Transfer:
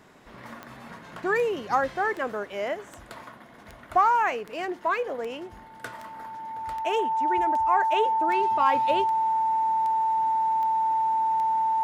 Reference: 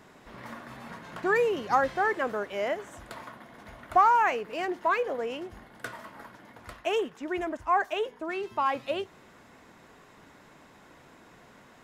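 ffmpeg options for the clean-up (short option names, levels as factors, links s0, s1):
-af "adeclick=t=4,bandreject=f=890:w=30,asetnsamples=n=441:p=0,asendcmd='7.92 volume volume -3.5dB',volume=1"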